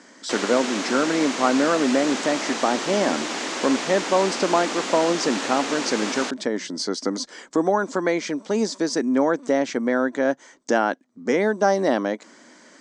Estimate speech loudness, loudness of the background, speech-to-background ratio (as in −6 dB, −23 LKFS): −23.0 LKFS, −27.5 LKFS, 4.5 dB